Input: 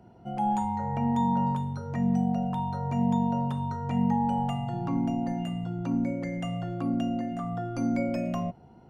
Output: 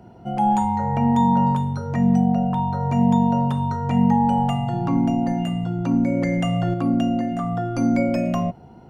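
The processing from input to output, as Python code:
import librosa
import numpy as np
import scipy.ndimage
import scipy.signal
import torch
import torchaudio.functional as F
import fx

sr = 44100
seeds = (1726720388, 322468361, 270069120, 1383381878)

y = fx.high_shelf(x, sr, hz=fx.line((2.18, 5000.0), (2.79, 3900.0)), db=-9.5, at=(2.18, 2.79), fade=0.02)
y = fx.env_flatten(y, sr, amount_pct=100, at=(6.08, 6.74))
y = y * 10.0 ** (8.0 / 20.0)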